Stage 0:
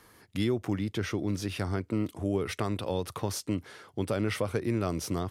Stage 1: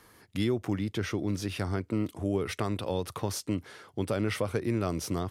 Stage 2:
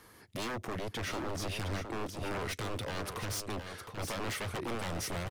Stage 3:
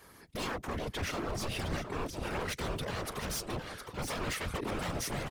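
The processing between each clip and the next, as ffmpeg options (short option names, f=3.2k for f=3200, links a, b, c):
-af anull
-af "aeval=exprs='0.0266*(abs(mod(val(0)/0.0266+3,4)-2)-1)':c=same,aecho=1:1:713:0.422"
-af "afftfilt=real='hypot(re,im)*cos(2*PI*random(0))':imag='hypot(re,im)*sin(2*PI*random(1))':win_size=512:overlap=0.75,volume=7dB"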